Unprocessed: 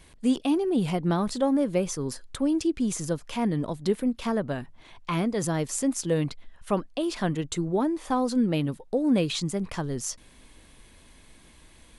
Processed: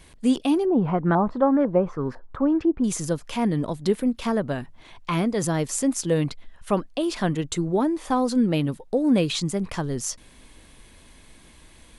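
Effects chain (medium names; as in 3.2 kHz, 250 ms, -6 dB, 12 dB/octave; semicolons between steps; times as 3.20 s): 0.65–2.84 s: LFO low-pass saw up 2 Hz 810–1700 Hz; trim +3 dB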